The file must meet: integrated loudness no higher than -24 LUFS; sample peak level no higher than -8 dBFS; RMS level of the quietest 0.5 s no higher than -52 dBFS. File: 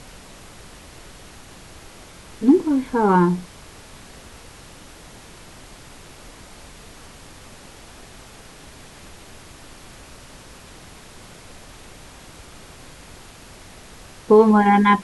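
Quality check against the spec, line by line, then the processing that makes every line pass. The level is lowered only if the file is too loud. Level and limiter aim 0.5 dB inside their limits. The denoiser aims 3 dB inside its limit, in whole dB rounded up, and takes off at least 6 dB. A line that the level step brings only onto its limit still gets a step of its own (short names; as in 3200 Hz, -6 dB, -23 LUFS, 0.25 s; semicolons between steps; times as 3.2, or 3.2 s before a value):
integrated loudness -16.5 LUFS: fail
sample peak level -4.0 dBFS: fail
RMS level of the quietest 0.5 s -43 dBFS: fail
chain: denoiser 6 dB, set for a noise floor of -43 dBFS; gain -8 dB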